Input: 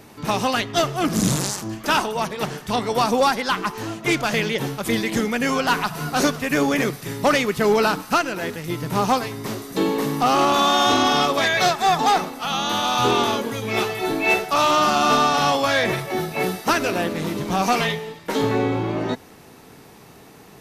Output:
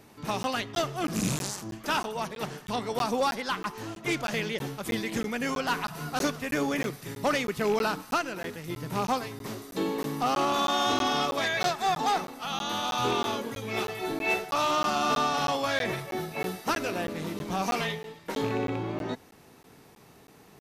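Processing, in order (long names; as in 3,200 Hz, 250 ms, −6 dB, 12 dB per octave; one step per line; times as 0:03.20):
loose part that buzzes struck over −21 dBFS, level −19 dBFS
regular buffer underruns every 0.32 s, samples 512, zero, from 0:00.43
level −8.5 dB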